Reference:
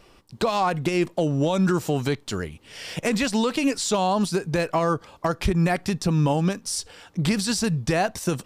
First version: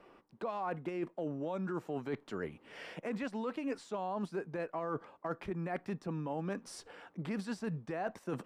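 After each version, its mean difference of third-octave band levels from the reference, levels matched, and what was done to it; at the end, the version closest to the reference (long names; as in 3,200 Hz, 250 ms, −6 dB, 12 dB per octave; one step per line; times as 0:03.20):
6.0 dB: three-way crossover with the lows and the highs turned down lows −18 dB, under 180 Hz, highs −19 dB, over 2,200 Hz
reversed playback
downward compressor 6 to 1, threshold −32 dBFS, peak gain reduction 13.5 dB
reversed playback
level −3 dB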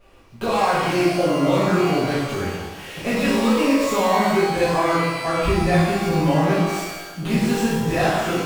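10.5 dB: running median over 9 samples
reverb with rising layers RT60 1.1 s, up +12 semitones, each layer −8 dB, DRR −10.5 dB
level −6.5 dB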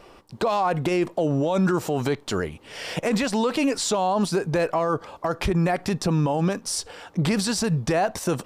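3.0 dB: parametric band 690 Hz +8.5 dB 2.8 octaves
brickwall limiter −14.5 dBFS, peak gain reduction 10.5 dB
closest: third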